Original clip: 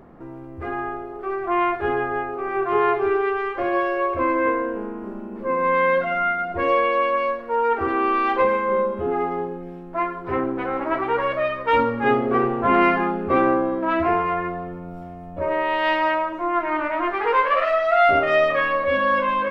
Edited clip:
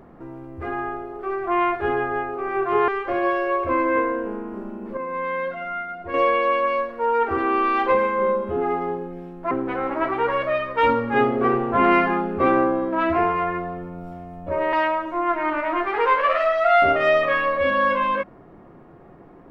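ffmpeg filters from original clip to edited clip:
ffmpeg -i in.wav -filter_complex "[0:a]asplit=6[link_01][link_02][link_03][link_04][link_05][link_06];[link_01]atrim=end=2.882[link_07];[link_02]atrim=start=3.378:end=5.472[link_08];[link_03]atrim=start=5.468:end=6.642,asetpts=PTS-STARTPTS,volume=-7.5dB[link_09];[link_04]atrim=start=6.638:end=10.012[link_10];[link_05]atrim=start=10.408:end=15.632[link_11];[link_06]atrim=start=15.998[link_12];[link_07][link_08]acrossfade=duration=0.004:curve1=hsin:curve2=hsin[link_13];[link_13][link_09]acrossfade=duration=0.004:curve1=hsin:curve2=hsin[link_14];[link_14][link_10]acrossfade=duration=0.004:curve1=hsin:curve2=hsin[link_15];[link_15][link_11]acrossfade=duration=0.004:curve1=hsin:curve2=hsin[link_16];[link_16][link_12]acrossfade=duration=0.004:curve1=hsin:curve2=hsin" out.wav

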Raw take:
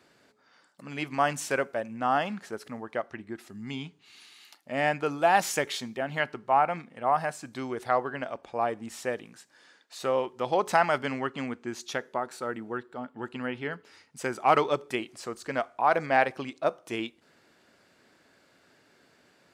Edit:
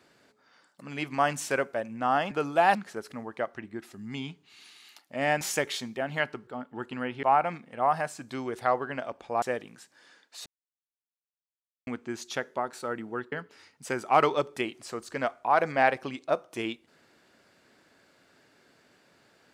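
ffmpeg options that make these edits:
ffmpeg -i in.wav -filter_complex "[0:a]asplit=10[link_01][link_02][link_03][link_04][link_05][link_06][link_07][link_08][link_09][link_10];[link_01]atrim=end=2.312[link_11];[link_02]atrim=start=4.968:end=5.412[link_12];[link_03]atrim=start=2.308:end=4.972[link_13];[link_04]atrim=start=5.408:end=6.472[link_14];[link_05]atrim=start=12.898:end=13.662[link_15];[link_06]atrim=start=6.468:end=8.662[link_16];[link_07]atrim=start=8.998:end=10.04,asetpts=PTS-STARTPTS,afade=type=out:start_time=1.038:duration=0.004:curve=hsin[link_17];[link_08]atrim=start=10.04:end=11.45,asetpts=PTS-STARTPTS,volume=0[link_18];[link_09]atrim=start=11.45:end=12.902,asetpts=PTS-STARTPTS,afade=type=in:duration=0.004:curve=hsin[link_19];[link_10]atrim=start=13.658[link_20];[link_11][link_12]acrossfade=duration=0.004:curve1=hsin:curve2=hsin[link_21];[link_21][link_13]acrossfade=duration=0.004:curve1=hsin:curve2=hsin[link_22];[link_22][link_14]acrossfade=duration=0.004:curve1=hsin:curve2=hsin[link_23];[link_23][link_15]acrossfade=duration=0.004:curve1=hsin:curve2=hsin[link_24];[link_24][link_16]acrossfade=duration=0.004:curve1=hsin:curve2=hsin[link_25];[link_17][link_18][link_19]concat=n=3:v=0:a=1[link_26];[link_25][link_26]acrossfade=duration=0.004:curve1=hsin:curve2=hsin[link_27];[link_27][link_20]acrossfade=duration=0.004:curve1=hsin:curve2=hsin" out.wav

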